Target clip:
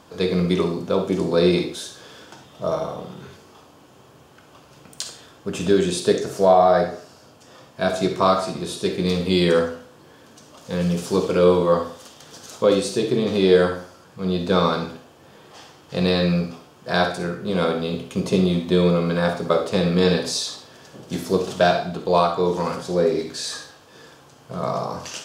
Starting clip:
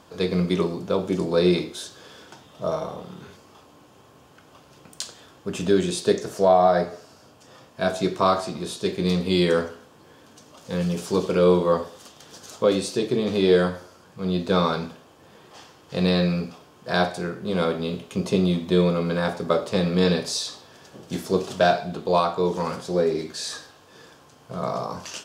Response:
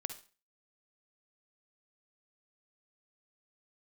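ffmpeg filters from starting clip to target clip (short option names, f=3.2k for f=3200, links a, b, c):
-filter_complex "[1:a]atrim=start_sample=2205[a];[0:a][a]afir=irnorm=-1:irlink=0,volume=3.5dB"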